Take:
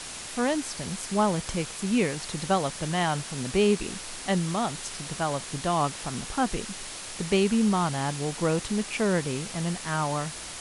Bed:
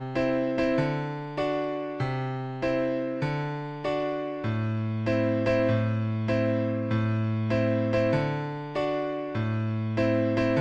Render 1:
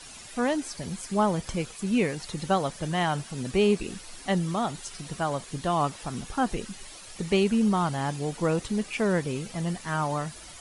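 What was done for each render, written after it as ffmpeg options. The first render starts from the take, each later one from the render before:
ffmpeg -i in.wav -af "afftdn=noise_reduction=11:noise_floor=-39" out.wav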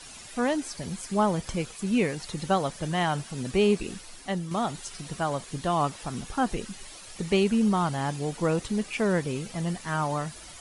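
ffmpeg -i in.wav -filter_complex "[0:a]asplit=2[link_01][link_02];[link_01]atrim=end=4.51,asetpts=PTS-STARTPTS,afade=type=out:start_time=3.9:duration=0.61:silence=0.446684[link_03];[link_02]atrim=start=4.51,asetpts=PTS-STARTPTS,afade=type=in:duration=0.004:curve=hsin:silence=0.446684[link_04];[link_03][link_04]concat=n=2:v=0:a=1" out.wav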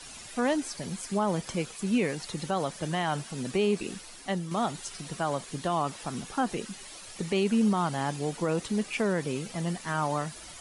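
ffmpeg -i in.wav -filter_complex "[0:a]acrossover=split=130[link_01][link_02];[link_01]acompressor=threshold=-52dB:ratio=6[link_03];[link_03][link_02]amix=inputs=2:normalize=0,alimiter=limit=-17dB:level=0:latency=1" out.wav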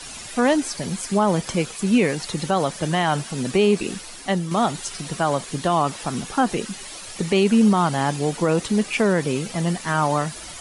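ffmpeg -i in.wav -af "volume=8.5dB" out.wav

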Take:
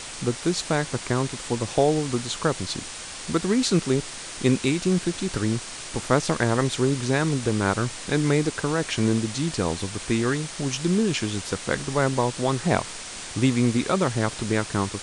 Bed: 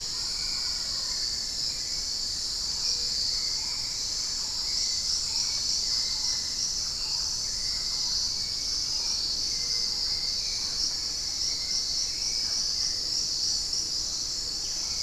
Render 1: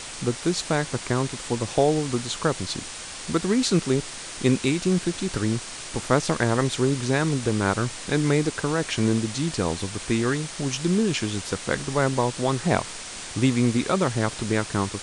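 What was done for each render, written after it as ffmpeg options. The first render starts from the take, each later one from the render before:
ffmpeg -i in.wav -af anull out.wav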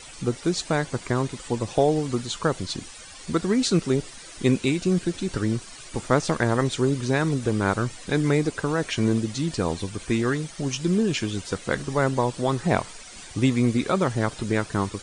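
ffmpeg -i in.wav -af "afftdn=noise_reduction=12:noise_floor=-37" out.wav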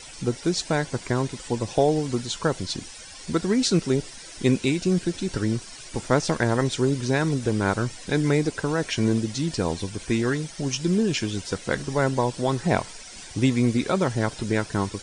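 ffmpeg -i in.wav -af "equalizer=frequency=5400:width_type=o:width=0.33:gain=4.5,bandreject=frequency=1200:width=9.5" out.wav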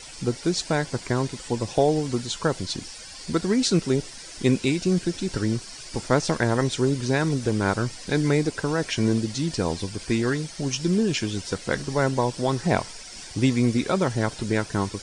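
ffmpeg -i in.wav -i bed.wav -filter_complex "[1:a]volume=-18dB[link_01];[0:a][link_01]amix=inputs=2:normalize=0" out.wav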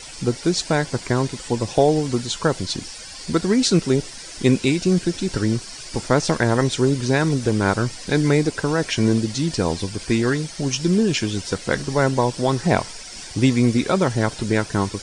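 ffmpeg -i in.wav -af "volume=4dB,alimiter=limit=-3dB:level=0:latency=1" out.wav

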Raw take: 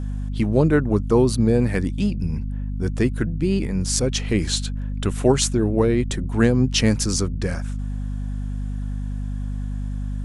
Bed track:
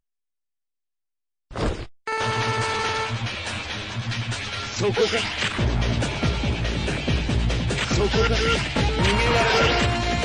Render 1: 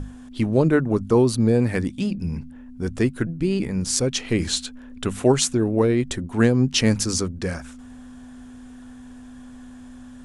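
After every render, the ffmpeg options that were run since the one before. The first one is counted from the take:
ffmpeg -i in.wav -af "bandreject=frequency=50:width_type=h:width=6,bandreject=frequency=100:width_type=h:width=6,bandreject=frequency=150:width_type=h:width=6,bandreject=frequency=200:width_type=h:width=6" out.wav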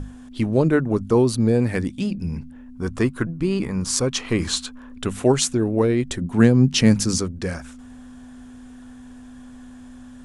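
ffmpeg -i in.wav -filter_complex "[0:a]asettb=1/sr,asplit=3[link_01][link_02][link_03];[link_01]atrim=end=2.754[link_04];[link_02]atrim=start=2.75:end=4.97,asetpts=PTS-STARTPTS,afade=type=in:duration=0.004:curve=qsin,afade=type=out:start_time=2.216:duration=0.004:curve=qsin,equalizer=frequency=1100:width_type=o:width=0.55:gain=11[link_05];[link_03]atrim=start=4.966[link_06];[link_04][link_05]acrossfade=duration=0.004:curve1=hsin:curve2=qsin[link_07];[link_07][link_06]acrossfade=duration=0.004:curve1=qsin:curve2=hsin,asettb=1/sr,asplit=3[link_08][link_09][link_10];[link_08]atrim=end=6.214[link_11];[link_09]atrim=start=6.21:end=7.18,asetpts=PTS-STARTPTS,afade=type=in:duration=0.004:curve=qsin,afade=type=out:start_time=0.966:duration=0.004:curve=qsin,equalizer=frequency=170:width=1.5:gain=8[link_12];[link_10]atrim=start=7.176[link_13];[link_11][link_12]acrossfade=duration=0.004:curve1=hsin:curve2=qsin[link_14];[link_14][link_13]acrossfade=duration=0.004:curve1=qsin:curve2=hsin" out.wav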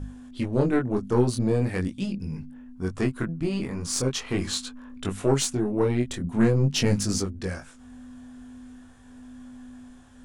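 ffmpeg -i in.wav -af "aeval=exprs='(tanh(2.51*val(0)+0.45)-tanh(0.45))/2.51':channel_layout=same,flanger=delay=20:depth=4.5:speed=0.42" out.wav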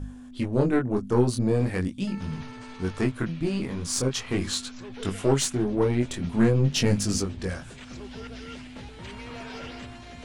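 ffmpeg -i in.wav -i bed.wav -filter_complex "[1:a]volume=-21dB[link_01];[0:a][link_01]amix=inputs=2:normalize=0" out.wav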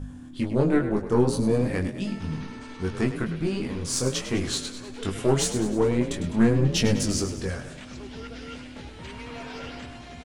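ffmpeg -i in.wav -filter_complex "[0:a]asplit=2[link_01][link_02];[link_02]adelay=13,volume=-11.5dB[link_03];[link_01][link_03]amix=inputs=2:normalize=0,asplit=2[link_04][link_05];[link_05]asplit=6[link_06][link_07][link_08][link_09][link_10][link_11];[link_06]adelay=102,afreqshift=37,volume=-11dB[link_12];[link_07]adelay=204,afreqshift=74,volume=-16.5dB[link_13];[link_08]adelay=306,afreqshift=111,volume=-22dB[link_14];[link_09]adelay=408,afreqshift=148,volume=-27.5dB[link_15];[link_10]adelay=510,afreqshift=185,volume=-33.1dB[link_16];[link_11]adelay=612,afreqshift=222,volume=-38.6dB[link_17];[link_12][link_13][link_14][link_15][link_16][link_17]amix=inputs=6:normalize=0[link_18];[link_04][link_18]amix=inputs=2:normalize=0" out.wav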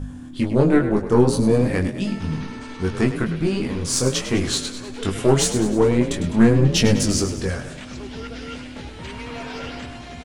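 ffmpeg -i in.wav -af "volume=5.5dB" out.wav

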